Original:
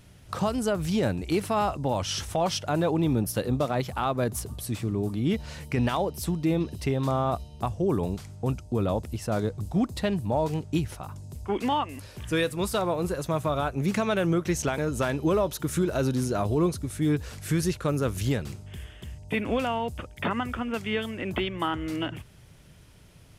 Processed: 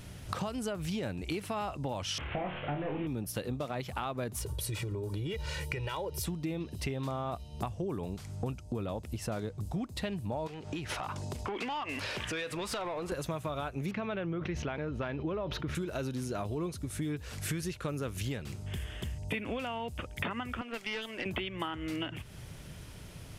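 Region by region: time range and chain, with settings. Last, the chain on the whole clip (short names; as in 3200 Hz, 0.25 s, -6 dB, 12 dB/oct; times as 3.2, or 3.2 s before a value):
2.18–3.07 delta modulation 16 kbps, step -37 dBFS + doubler 14 ms -10.5 dB + flutter echo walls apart 4.7 m, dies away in 0.32 s
4.4–6.26 comb 2.1 ms, depth 93% + compressor, threshold -27 dBFS
10.47–13.12 high shelf 8400 Hz -12 dB + compressor 10:1, threshold -38 dBFS + overdrive pedal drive 19 dB, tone 4700 Hz, clips at -25 dBFS
13.91–15.75 air absorption 290 m + sustainer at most 63 dB/s
20.61–21.26 HPF 330 Hz + tube stage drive 27 dB, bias 0.8
whole clip: dynamic EQ 2600 Hz, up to +5 dB, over -48 dBFS, Q 1.2; compressor 6:1, threshold -40 dBFS; gain +6 dB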